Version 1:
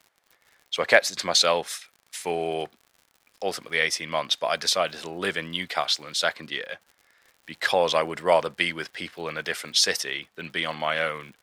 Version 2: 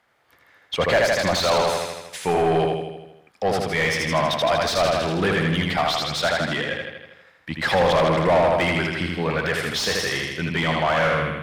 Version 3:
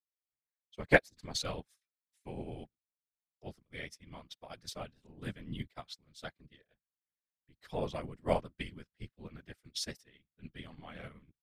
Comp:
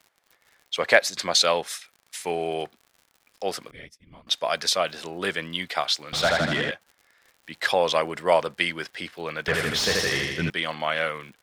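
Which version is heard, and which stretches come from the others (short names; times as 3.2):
1
3.71–4.27 from 3
6.13–6.71 from 2
9.48–10.5 from 2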